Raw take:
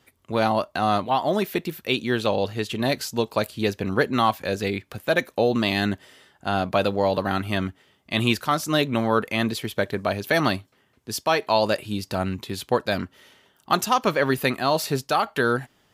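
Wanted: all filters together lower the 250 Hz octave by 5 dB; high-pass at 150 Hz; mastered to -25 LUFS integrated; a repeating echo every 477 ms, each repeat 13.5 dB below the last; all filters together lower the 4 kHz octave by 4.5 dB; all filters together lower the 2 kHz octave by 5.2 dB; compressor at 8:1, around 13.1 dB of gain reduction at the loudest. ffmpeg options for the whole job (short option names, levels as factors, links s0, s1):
-af "highpass=150,equalizer=f=250:t=o:g=-5.5,equalizer=f=2000:t=o:g=-6,equalizer=f=4000:t=o:g=-3.5,acompressor=threshold=0.0282:ratio=8,aecho=1:1:477|954:0.211|0.0444,volume=3.76"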